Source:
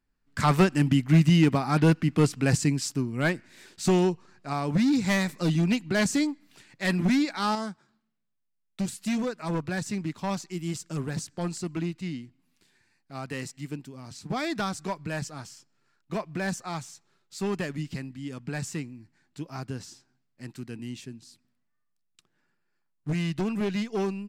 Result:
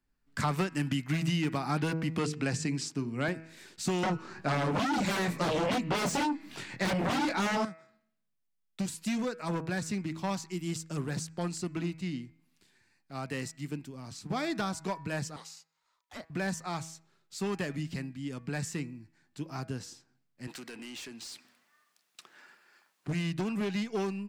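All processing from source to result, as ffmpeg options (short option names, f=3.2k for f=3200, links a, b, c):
-filter_complex "[0:a]asettb=1/sr,asplit=3[a][b][c];[a]atrim=end=2.184[d];[b]atrim=start=2.18:end=3.28,asetpts=PTS-STARTPTS,afade=t=in:d=0.004:c=qsin,afade=t=out:st=1.096:d=0.004:c=qsin,highpass=110,lowpass=8k,bandreject=f=50:t=h:w=6,bandreject=f=100:t=h:w=6,bandreject=f=150:t=h:w=6,bandreject=f=200:t=h:w=6,bandreject=f=250:t=h:w=6,bandreject=f=300:t=h:w=6,bandreject=f=350:t=h:w=6,bandreject=f=400:t=h:w=6,bandreject=f=450:t=h:w=6[e];[c]atrim=start=3.276[f];[d][e]acrossfade=d=0.004:c1=hsin:c2=qsin[g];[g][f]acrossfade=d=0.004:c1=qsin:c2=hsin,asettb=1/sr,asplit=3[h][i][j];[h]atrim=end=4.034[k];[i]atrim=start=4.03:end=7.65,asetpts=PTS-STARTPTS,afade=t=in:d=0.004:c=qsin,afade=t=out:st=3.616:d=0.004:c=qsin,flanger=delay=20:depth=3.8:speed=2,aeval=exprs='0.15*sin(PI/2*5.01*val(0)/0.15)':c=same,highshelf=f=4.7k:g=-8[l];[j]atrim=start=7.646[m];[k][l]acrossfade=d=0.004:c1=hsin:c2=qsin[n];[n][m]acrossfade=d=0.004:c1=qsin:c2=hsin,asettb=1/sr,asplit=3[o][p][q];[o]atrim=end=15.364[r];[p]atrim=start=15.36:end=16.3,asetpts=PTS-STARTPTS,afade=t=in:d=0.004:c=qsin,afade=t=out:st=0.936:d=0.004:c=qsin,highpass=1.4k,afreqshift=-420[s];[q]atrim=start=16.296[t];[r][s]acrossfade=d=0.004:c1=hsin:c2=qsin[u];[u][t]acrossfade=d=0.004:c1=qsin:c2=hsin,asettb=1/sr,asplit=3[v][w][x];[v]atrim=end=20.474[y];[w]atrim=start=20.47:end=23.08,asetpts=PTS-STARTPTS,afade=t=in:d=0.004:c=qsin,afade=t=out:st=2.606:d=0.004:c=qsin,highpass=f=360:p=1,acompressor=threshold=-54dB:ratio=4:attack=3.2:release=140:knee=1:detection=peak,asplit=2[z][aa];[aa]highpass=f=720:p=1,volume=29dB,asoftclip=type=tanh:threshold=-32dB[ab];[z][ab]amix=inputs=2:normalize=0,lowpass=f=6k:p=1,volume=-6dB[ac];[x]atrim=start=23.076[ad];[y][ac]acrossfade=d=0.004:c1=hsin:c2=qsin[ae];[ae][ad]acrossfade=d=0.004:c1=qsin:c2=hsin,bandreject=f=161.7:t=h:w=4,bandreject=f=323.4:t=h:w=4,bandreject=f=485.1:t=h:w=4,bandreject=f=646.8:t=h:w=4,bandreject=f=808.5:t=h:w=4,bandreject=f=970.2:t=h:w=4,bandreject=f=1.1319k:t=h:w=4,bandreject=f=1.2936k:t=h:w=4,bandreject=f=1.4553k:t=h:w=4,bandreject=f=1.617k:t=h:w=4,bandreject=f=1.7787k:t=h:w=4,bandreject=f=1.9404k:t=h:w=4,bandreject=f=2.1021k:t=h:w=4,bandreject=f=2.2638k:t=h:w=4,bandreject=f=2.4255k:t=h:w=4,bandreject=f=2.5872k:t=h:w=4,acrossover=split=84|970[af][ag][ah];[af]acompressor=threshold=-58dB:ratio=4[ai];[ag]acompressor=threshold=-28dB:ratio=4[aj];[ah]acompressor=threshold=-34dB:ratio=4[ak];[ai][aj][ak]amix=inputs=3:normalize=0,volume=-1dB"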